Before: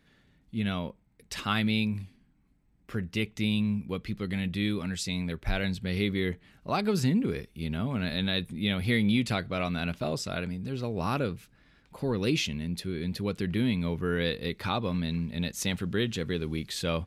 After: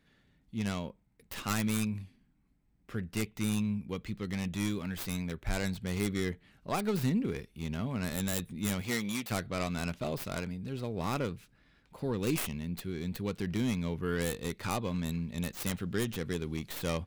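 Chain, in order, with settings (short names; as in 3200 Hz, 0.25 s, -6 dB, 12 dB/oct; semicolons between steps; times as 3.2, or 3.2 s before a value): tracing distortion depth 0.36 ms; 8.81–9.3 HPF 250 Hz -> 640 Hz 6 dB/oct; gain -4 dB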